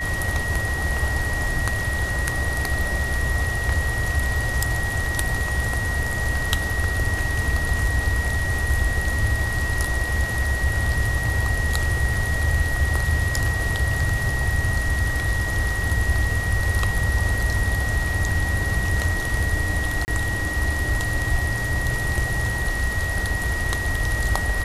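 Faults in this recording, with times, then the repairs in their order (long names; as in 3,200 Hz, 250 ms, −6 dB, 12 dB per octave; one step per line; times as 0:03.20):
whistle 1,900 Hz −26 dBFS
0:12.14: drop-out 3.5 ms
0:20.05–0:20.08: drop-out 29 ms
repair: notch filter 1,900 Hz, Q 30
repair the gap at 0:12.14, 3.5 ms
repair the gap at 0:20.05, 29 ms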